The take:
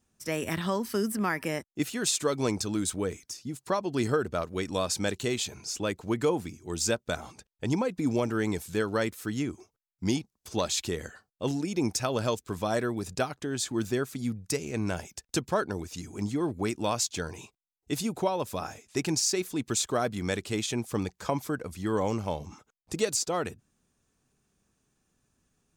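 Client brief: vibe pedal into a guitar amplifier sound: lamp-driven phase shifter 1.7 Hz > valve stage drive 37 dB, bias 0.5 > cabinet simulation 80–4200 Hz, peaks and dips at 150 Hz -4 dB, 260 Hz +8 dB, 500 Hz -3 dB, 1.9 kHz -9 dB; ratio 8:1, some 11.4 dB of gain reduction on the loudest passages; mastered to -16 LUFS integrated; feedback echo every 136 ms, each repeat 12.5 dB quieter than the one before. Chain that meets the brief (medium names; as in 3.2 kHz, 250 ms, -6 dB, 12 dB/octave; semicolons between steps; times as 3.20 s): compression 8:1, threshold -34 dBFS; feedback delay 136 ms, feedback 24%, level -12.5 dB; lamp-driven phase shifter 1.7 Hz; valve stage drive 37 dB, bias 0.5; cabinet simulation 80–4200 Hz, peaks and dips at 150 Hz -4 dB, 260 Hz +8 dB, 500 Hz -3 dB, 1.9 kHz -9 dB; trim +29.5 dB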